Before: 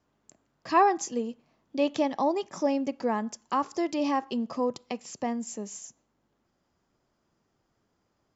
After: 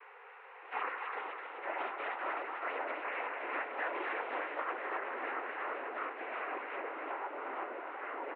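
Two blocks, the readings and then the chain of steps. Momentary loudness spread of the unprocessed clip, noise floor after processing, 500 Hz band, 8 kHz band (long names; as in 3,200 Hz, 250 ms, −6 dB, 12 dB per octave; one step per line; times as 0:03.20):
14 LU, −54 dBFS, −10.5 dB, can't be measured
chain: gate on every frequency bin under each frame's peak −25 dB weak
comb filter 2.3 ms
hum with harmonics 400 Hz, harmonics 11, −64 dBFS 0 dB per octave
mid-hump overdrive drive 24 dB, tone 1,300 Hz, clips at −24 dBFS
cochlear-implant simulation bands 12
echo with a time of its own for lows and highs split 690 Hz, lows 412 ms, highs 255 ms, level −4 dB
delay with pitch and tempo change per echo 610 ms, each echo −6 semitones, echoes 3
single-sideband voice off tune +110 Hz 170–2,300 Hz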